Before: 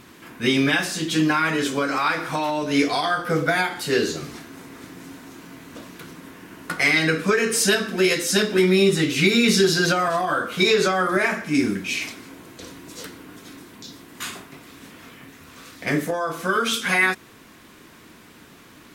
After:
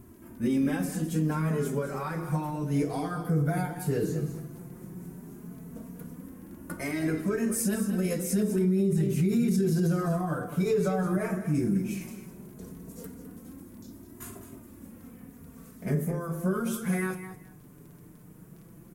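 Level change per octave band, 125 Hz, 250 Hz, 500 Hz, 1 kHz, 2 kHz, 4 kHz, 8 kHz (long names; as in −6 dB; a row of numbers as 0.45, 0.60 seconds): +1.5, −4.0, −9.0, −13.0, −19.0, −24.0, −10.5 decibels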